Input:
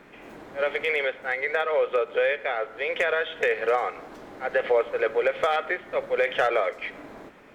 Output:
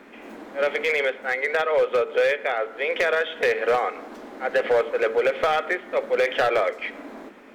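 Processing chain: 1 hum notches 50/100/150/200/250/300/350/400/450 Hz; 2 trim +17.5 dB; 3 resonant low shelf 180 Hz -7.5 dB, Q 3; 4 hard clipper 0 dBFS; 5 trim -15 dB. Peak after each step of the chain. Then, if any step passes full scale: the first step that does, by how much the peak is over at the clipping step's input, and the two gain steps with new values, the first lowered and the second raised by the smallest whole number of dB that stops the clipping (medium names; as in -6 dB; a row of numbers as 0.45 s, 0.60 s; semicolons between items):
-12.0 dBFS, +5.5 dBFS, +6.0 dBFS, 0.0 dBFS, -15.0 dBFS; step 2, 6.0 dB; step 2 +11.5 dB, step 5 -9 dB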